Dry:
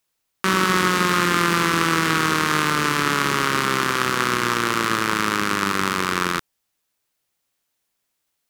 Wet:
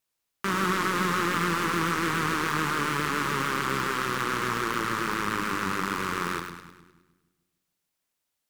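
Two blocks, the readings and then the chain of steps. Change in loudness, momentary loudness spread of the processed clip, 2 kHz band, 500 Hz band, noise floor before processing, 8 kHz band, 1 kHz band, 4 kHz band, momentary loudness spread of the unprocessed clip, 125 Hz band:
−7.0 dB, 4 LU, −7.5 dB, −7.0 dB, −76 dBFS, −9.0 dB, −6.5 dB, −9.5 dB, 4 LU, −6.0 dB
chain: hard clipping −12 dBFS, distortion −11 dB
echo with a time of its own for lows and highs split 330 Hz, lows 148 ms, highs 103 ms, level −7 dB
pitch vibrato 7 Hz 63 cents
level −6.5 dB

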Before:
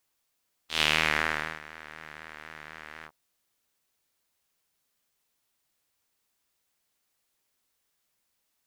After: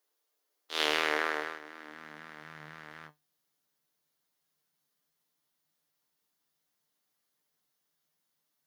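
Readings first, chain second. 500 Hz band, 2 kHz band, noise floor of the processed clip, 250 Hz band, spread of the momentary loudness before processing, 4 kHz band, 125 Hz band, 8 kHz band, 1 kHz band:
+2.5 dB, −4.5 dB, −81 dBFS, −2.0 dB, 20 LU, −4.5 dB, −12.5 dB, −5.0 dB, −2.0 dB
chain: thirty-one-band graphic EQ 125 Hz −12 dB, 2,500 Hz −6 dB, 8,000 Hz −6 dB
high-pass filter sweep 400 Hz → 140 Hz, 0:01.49–0:02.55
tuned comb filter 150 Hz, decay 0.17 s, harmonics all, mix 70%
level +3 dB

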